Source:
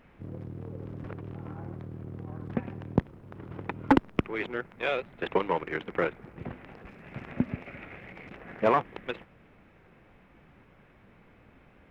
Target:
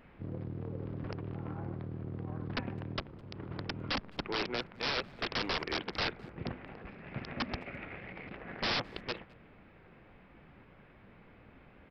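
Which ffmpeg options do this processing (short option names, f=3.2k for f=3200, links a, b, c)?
-filter_complex "[0:a]aresample=11025,aeval=exprs='(mod(21.1*val(0)+1,2)-1)/21.1':c=same,aresample=44100,asplit=2[a][b];[b]adelay=210,highpass=300,lowpass=3.4k,asoftclip=type=hard:threshold=-30.5dB,volume=-25dB[c];[a][c]amix=inputs=2:normalize=0"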